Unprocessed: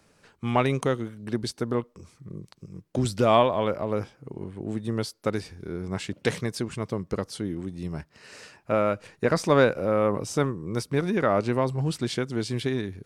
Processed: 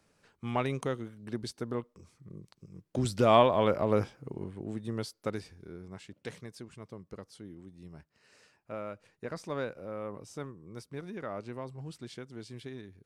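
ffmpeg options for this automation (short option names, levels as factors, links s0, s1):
-af "volume=1.12,afade=t=in:st=2.72:d=1.24:silence=0.354813,afade=t=out:st=3.96:d=0.76:silence=0.398107,afade=t=out:st=5.23:d=0.76:silence=0.354813"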